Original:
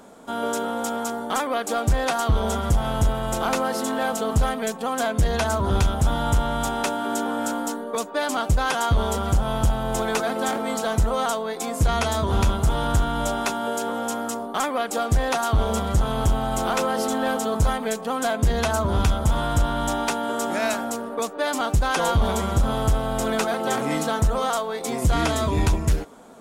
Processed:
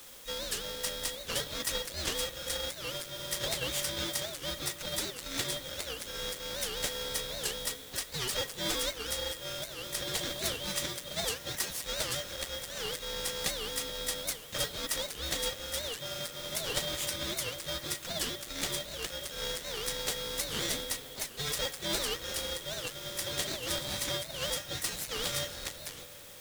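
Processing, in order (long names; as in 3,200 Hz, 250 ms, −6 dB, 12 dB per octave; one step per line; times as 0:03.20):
downward compressor 4 to 1, threshold −23 dBFS, peak gain reduction 7 dB
hard clipping −23.5 dBFS, distortion −14 dB
Chebyshev high-pass with heavy ripple 1,300 Hz, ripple 6 dB
harmonic generator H 6 −15 dB, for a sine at −19 dBFS
noise that follows the level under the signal 13 dB
pitch-shifted copies added +5 semitones −7 dB
background noise white −54 dBFS
ring modulation 1,900 Hz
convolution reverb RT60 5.6 s, pre-delay 48 ms, DRR 13.5 dB
wow of a warped record 78 rpm, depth 250 cents
level +5.5 dB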